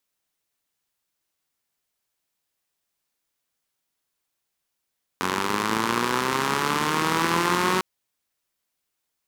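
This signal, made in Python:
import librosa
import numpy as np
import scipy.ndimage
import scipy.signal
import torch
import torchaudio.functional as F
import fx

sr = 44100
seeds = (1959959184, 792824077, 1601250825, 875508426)

y = fx.engine_four_rev(sr, seeds[0], length_s=2.6, rpm=2700, resonances_hz=(230.0, 360.0, 1000.0), end_rpm=5600)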